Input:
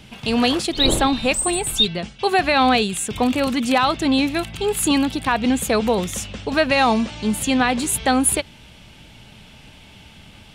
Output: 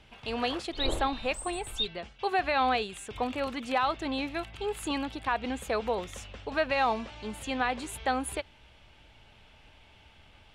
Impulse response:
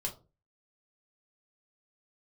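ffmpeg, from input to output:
-af "lowpass=f=1.8k:p=1,equalizer=f=180:w=0.81:g=-14,volume=-6.5dB"

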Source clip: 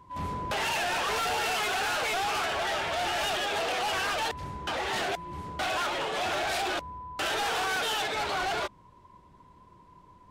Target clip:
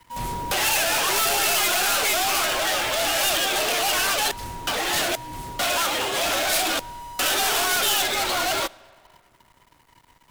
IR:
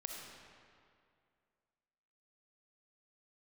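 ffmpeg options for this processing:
-filter_complex "[0:a]aeval=exprs='sgn(val(0))*max(abs(val(0))-0.00168,0)':c=same,aemphasis=mode=production:type=75fm,afreqshift=-44,aeval=exprs='clip(val(0),-1,0.0668)':c=same,asplit=2[a][b];[1:a]atrim=start_sample=2205[c];[b][c]afir=irnorm=-1:irlink=0,volume=-17.5dB[d];[a][d]amix=inputs=2:normalize=0,volume=4.5dB"

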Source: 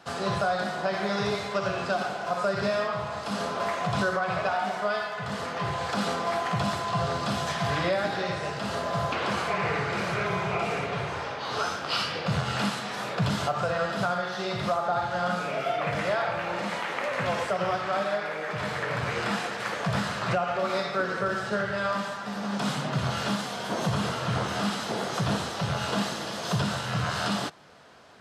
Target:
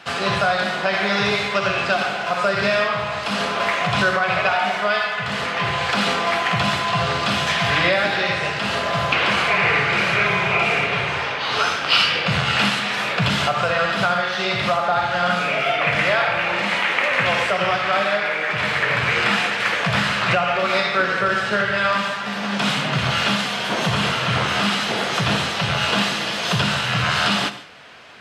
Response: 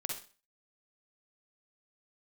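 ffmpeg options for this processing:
-filter_complex "[0:a]equalizer=f=2.5k:w=0.97:g=12,asplit=2[a][b];[1:a]atrim=start_sample=2205,adelay=74[c];[b][c]afir=irnorm=-1:irlink=0,volume=-13.5dB[d];[a][d]amix=inputs=2:normalize=0,volume=4.5dB"

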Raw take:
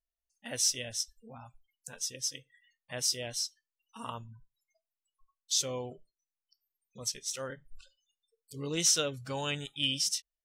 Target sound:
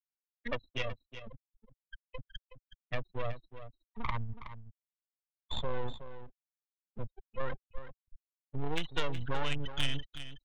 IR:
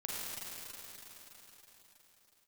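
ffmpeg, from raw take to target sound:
-filter_complex "[0:a]afftfilt=real='re*gte(hypot(re,im),0.0355)':imag='im*gte(hypot(re,im),0.0355)':win_size=1024:overlap=0.75,bandreject=f=670:w=12,acrossover=split=2800[a][b];[b]acompressor=threshold=-40dB:ratio=4:attack=1:release=60[c];[a][c]amix=inputs=2:normalize=0,highpass=f=56:p=1,afftfilt=real='re*gte(hypot(re,im),0.00631)':imag='im*gte(hypot(re,im),0.00631)':win_size=1024:overlap=0.75,aresample=8000,aeval=exprs='max(val(0),0)':c=same,aresample=44100,acrossover=split=96|370[d][e][f];[d]acompressor=threshold=-50dB:ratio=4[g];[e]acompressor=threshold=-56dB:ratio=4[h];[f]acompressor=threshold=-42dB:ratio=4[i];[g][h][i]amix=inputs=3:normalize=0,asubboost=boost=2.5:cutoff=170,aeval=exprs='0.0447*(cos(1*acos(clip(val(0)/0.0447,-1,1)))-cos(1*PI/2))+0.00631*(cos(4*acos(clip(val(0)/0.0447,-1,1)))-cos(4*PI/2))':c=same,asplit=2[j][k];[k]aecho=0:1:370:0.251[l];[j][l]amix=inputs=2:normalize=0,volume=14dB"

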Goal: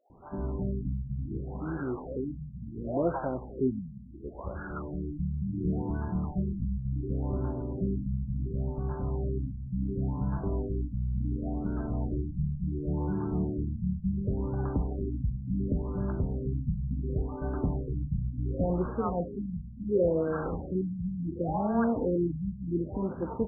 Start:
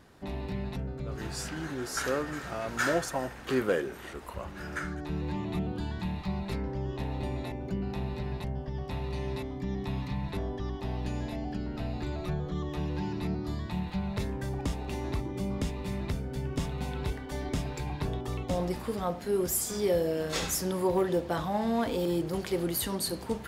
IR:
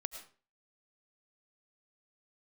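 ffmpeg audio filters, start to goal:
-filter_complex "[0:a]acrossover=split=700[a][b];[a]adelay=100[c];[c][b]amix=inputs=2:normalize=0,asplit=2[d][e];[1:a]atrim=start_sample=2205,asetrate=61740,aresample=44100[f];[e][f]afir=irnorm=-1:irlink=0,volume=2dB[g];[d][g]amix=inputs=2:normalize=0,afftfilt=real='re*lt(b*sr/1024,220*pow(1700/220,0.5+0.5*sin(2*PI*0.7*pts/sr)))':imag='im*lt(b*sr/1024,220*pow(1700/220,0.5+0.5*sin(2*PI*0.7*pts/sr)))':win_size=1024:overlap=0.75,volume=-1.5dB"

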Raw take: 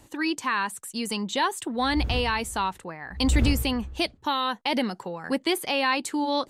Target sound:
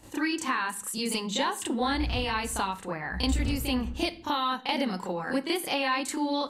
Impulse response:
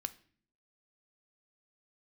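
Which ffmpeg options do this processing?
-filter_complex "[0:a]acompressor=threshold=-31dB:ratio=4,asplit=2[a][b];[1:a]atrim=start_sample=2205,adelay=32[c];[b][c]afir=irnorm=-1:irlink=0,volume=7.5dB[d];[a][d]amix=inputs=2:normalize=0,volume=-2.5dB"

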